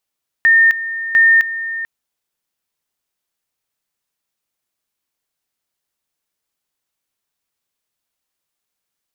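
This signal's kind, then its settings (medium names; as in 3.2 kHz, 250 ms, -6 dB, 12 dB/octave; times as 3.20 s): two-level tone 1.82 kHz -7 dBFS, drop 13.5 dB, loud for 0.26 s, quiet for 0.44 s, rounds 2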